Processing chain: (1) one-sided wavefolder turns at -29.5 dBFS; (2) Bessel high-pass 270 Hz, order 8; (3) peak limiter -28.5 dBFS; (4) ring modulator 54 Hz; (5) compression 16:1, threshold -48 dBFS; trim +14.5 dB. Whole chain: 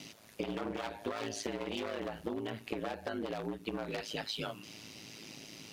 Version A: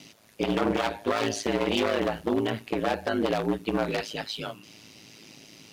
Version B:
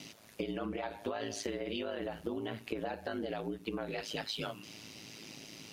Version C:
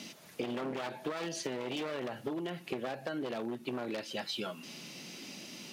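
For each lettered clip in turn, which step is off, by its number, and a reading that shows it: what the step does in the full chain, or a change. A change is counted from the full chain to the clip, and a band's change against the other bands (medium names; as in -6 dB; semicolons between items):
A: 5, mean gain reduction 7.5 dB; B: 1, distortion -5 dB; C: 4, momentary loudness spread change -2 LU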